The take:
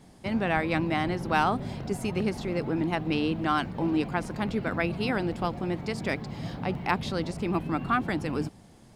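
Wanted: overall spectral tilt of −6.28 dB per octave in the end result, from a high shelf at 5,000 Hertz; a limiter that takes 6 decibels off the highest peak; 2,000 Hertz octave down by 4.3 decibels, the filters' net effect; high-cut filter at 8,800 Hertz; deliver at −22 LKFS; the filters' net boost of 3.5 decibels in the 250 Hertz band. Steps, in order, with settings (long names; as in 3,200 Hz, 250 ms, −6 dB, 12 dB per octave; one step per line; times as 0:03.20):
low-pass filter 8,800 Hz
parametric band 250 Hz +5 dB
parametric band 2,000 Hz −6.5 dB
high-shelf EQ 5,000 Hz +4.5 dB
level +7 dB
brickwall limiter −11 dBFS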